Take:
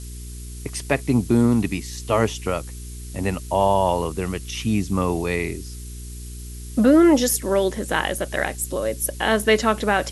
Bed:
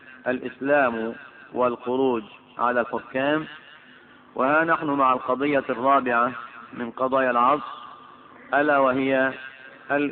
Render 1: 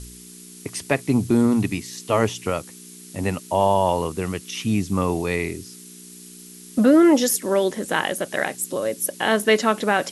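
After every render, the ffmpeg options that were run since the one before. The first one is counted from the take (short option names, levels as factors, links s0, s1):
-af "bandreject=f=60:t=h:w=4,bandreject=f=120:t=h:w=4"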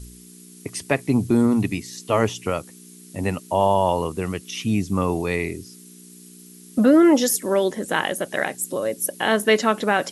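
-af "afftdn=nr=6:nf=-43"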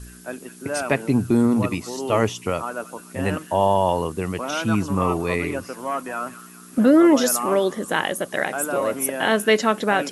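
-filter_complex "[1:a]volume=0.398[s0];[0:a][s0]amix=inputs=2:normalize=0"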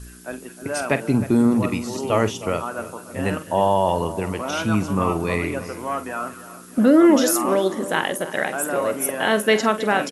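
-filter_complex "[0:a]asplit=2[s0][s1];[s1]adelay=47,volume=0.224[s2];[s0][s2]amix=inputs=2:normalize=0,asplit=2[s3][s4];[s4]adelay=311,lowpass=f=1600:p=1,volume=0.211,asplit=2[s5][s6];[s6]adelay=311,lowpass=f=1600:p=1,volume=0.46,asplit=2[s7][s8];[s8]adelay=311,lowpass=f=1600:p=1,volume=0.46,asplit=2[s9][s10];[s10]adelay=311,lowpass=f=1600:p=1,volume=0.46[s11];[s3][s5][s7][s9][s11]amix=inputs=5:normalize=0"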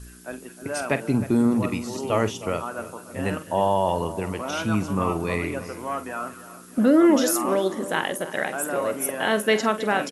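-af "volume=0.708"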